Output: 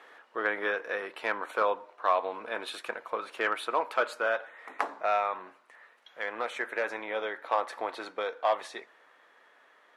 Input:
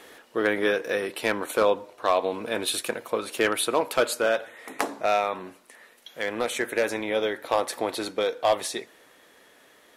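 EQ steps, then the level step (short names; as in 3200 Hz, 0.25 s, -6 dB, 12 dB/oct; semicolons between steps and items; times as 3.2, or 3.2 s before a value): band-pass 1200 Hz, Q 1.2; 0.0 dB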